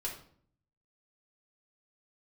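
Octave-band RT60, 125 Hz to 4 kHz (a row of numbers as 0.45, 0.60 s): 0.95, 0.80, 0.60, 0.50, 0.45, 0.40 s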